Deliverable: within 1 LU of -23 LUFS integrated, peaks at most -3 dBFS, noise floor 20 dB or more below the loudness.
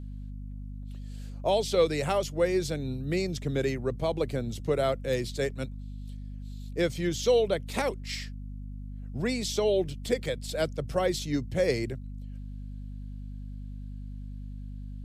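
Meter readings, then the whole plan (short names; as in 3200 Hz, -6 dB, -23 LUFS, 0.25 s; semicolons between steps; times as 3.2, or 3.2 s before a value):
hum 50 Hz; harmonics up to 250 Hz; hum level -36 dBFS; loudness -29.5 LUFS; peak -12.0 dBFS; loudness target -23.0 LUFS
-> notches 50/100/150/200/250 Hz; gain +6.5 dB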